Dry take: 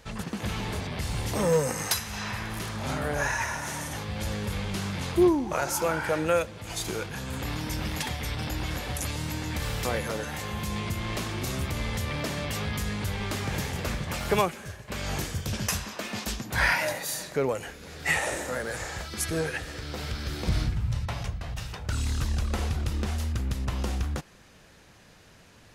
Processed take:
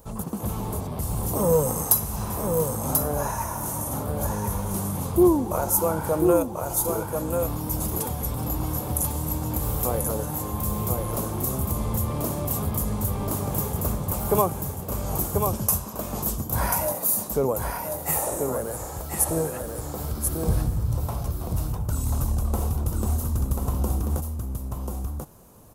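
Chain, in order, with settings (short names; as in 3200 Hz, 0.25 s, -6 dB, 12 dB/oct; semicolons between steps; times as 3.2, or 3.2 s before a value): EQ curve 1100 Hz 0 dB, 1800 Hz -19 dB, 4800 Hz -12 dB, 14000 Hz +15 dB; on a send: echo 1.038 s -4.5 dB; on the sum: gain +3 dB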